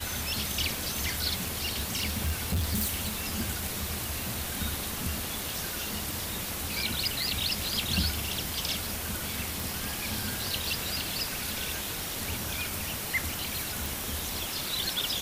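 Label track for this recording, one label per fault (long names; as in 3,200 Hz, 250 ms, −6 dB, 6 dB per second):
1.510000	3.430000	clipping −24 dBFS
9.600000	9.600000	click
13.860000	13.860000	click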